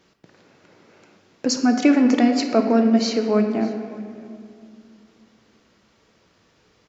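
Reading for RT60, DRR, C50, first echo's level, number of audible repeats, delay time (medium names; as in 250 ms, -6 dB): 2.3 s, 4.5 dB, 6.0 dB, -21.5 dB, 1, 601 ms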